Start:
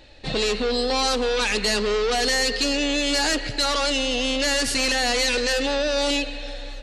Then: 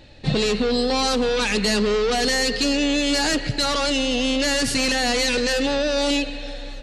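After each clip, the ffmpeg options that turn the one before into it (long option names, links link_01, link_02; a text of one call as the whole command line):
ffmpeg -i in.wav -af "equalizer=frequency=150:width=1:gain=12" out.wav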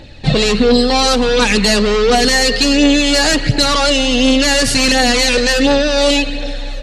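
ffmpeg -i in.wav -af "aphaser=in_gain=1:out_gain=1:delay=1.8:decay=0.35:speed=1.4:type=triangular,volume=8dB" out.wav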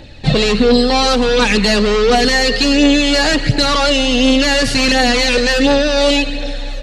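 ffmpeg -i in.wav -filter_complex "[0:a]acrossover=split=5200[link_01][link_02];[link_02]acompressor=threshold=-28dB:ratio=4:attack=1:release=60[link_03];[link_01][link_03]amix=inputs=2:normalize=0" out.wav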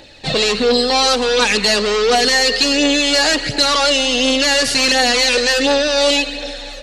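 ffmpeg -i in.wav -af "bass=frequency=250:gain=-13,treble=frequency=4000:gain=5,volume=-1dB" out.wav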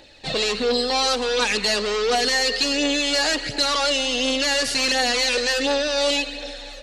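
ffmpeg -i in.wav -af "equalizer=frequency=140:width_type=o:width=1.3:gain=-4,volume=-6.5dB" out.wav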